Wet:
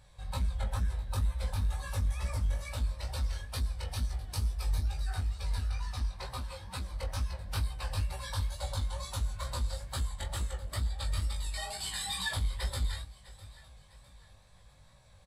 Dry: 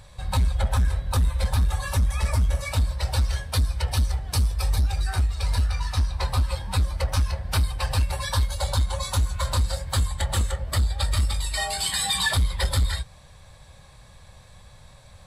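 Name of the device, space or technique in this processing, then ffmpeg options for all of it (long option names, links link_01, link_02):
double-tracked vocal: -filter_complex "[0:a]asettb=1/sr,asplit=3[link_01][link_02][link_03];[link_01]atrim=end=6.104[link_04];[link_02]atrim=start=6.1:end=6.91,asetpts=PTS-STARTPTS,afade=type=in:duration=0.004:curve=qsin,afade=type=out:start_time=0.806:duration=0.004:curve=qsin,highpass=frequency=110:poles=1[link_05];[link_03]atrim=start=6.906[link_06];[link_04][link_05]acrossfade=duration=0.004:curve1=hsin:curve2=qsin[link_07];[link_07][link_06]acrossfade=duration=0.004:curve1=qsin:curve2=hsin,asplit=2[link_08][link_09];[link_09]adelay=21,volume=-11dB[link_10];[link_08][link_10]amix=inputs=2:normalize=0,aecho=1:1:654|1308|1962:0.112|0.0494|0.0217,flanger=delay=15.5:depth=5.2:speed=2.2,volume=-8.5dB"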